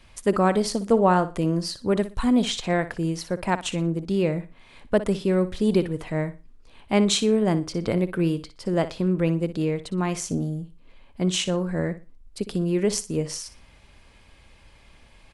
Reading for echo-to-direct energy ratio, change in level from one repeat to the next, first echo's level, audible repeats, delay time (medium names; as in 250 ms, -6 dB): -13.5 dB, -12.0 dB, -14.0 dB, 2, 60 ms